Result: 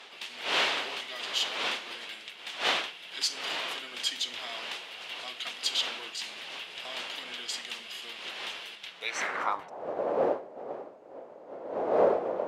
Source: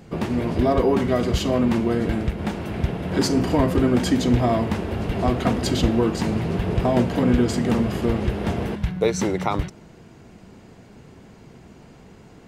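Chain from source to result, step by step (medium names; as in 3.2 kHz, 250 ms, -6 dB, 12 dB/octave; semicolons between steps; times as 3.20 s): wind noise 520 Hz -17 dBFS; band-pass sweep 3.2 kHz -> 560 Hz, 8.97–9.87 s; RIAA curve recording; trim -1.5 dB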